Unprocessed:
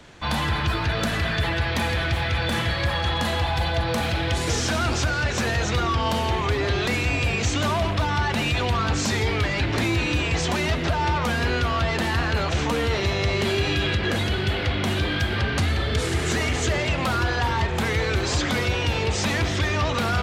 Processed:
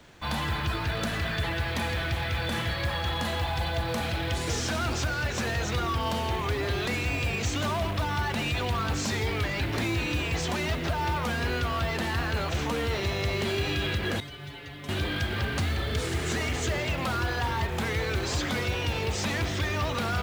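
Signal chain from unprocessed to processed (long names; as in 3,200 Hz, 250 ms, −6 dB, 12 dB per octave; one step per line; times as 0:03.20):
0:14.20–0:14.89: stiff-string resonator 140 Hz, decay 0.24 s, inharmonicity 0.002
log-companded quantiser 6 bits
level −5.5 dB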